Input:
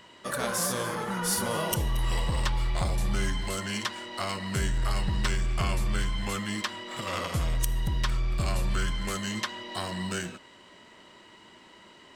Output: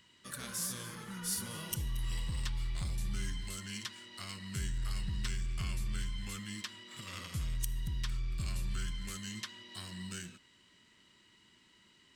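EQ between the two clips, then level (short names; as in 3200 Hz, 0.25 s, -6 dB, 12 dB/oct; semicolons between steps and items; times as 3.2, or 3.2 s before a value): passive tone stack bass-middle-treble 6-0-2; low shelf 79 Hz -5.5 dB; +7.5 dB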